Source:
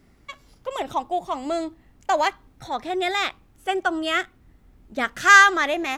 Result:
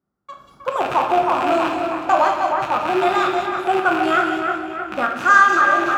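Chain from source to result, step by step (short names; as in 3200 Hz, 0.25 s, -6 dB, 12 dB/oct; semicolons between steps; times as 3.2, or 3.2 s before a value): rattling part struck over -42 dBFS, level -11 dBFS; AGC gain up to 7 dB; on a send: split-band echo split 2500 Hz, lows 0.313 s, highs 0.184 s, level -6 dB; on the sum: gate with hold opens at -44 dBFS; HPF 100 Hz 12 dB/oct; resonant high shelf 1700 Hz -7.5 dB, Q 3; shoebox room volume 320 m³, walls mixed, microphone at 0.91 m; in parallel at -0.5 dB: limiter -8.5 dBFS, peak gain reduction 12 dB; on the sum: gain -7 dB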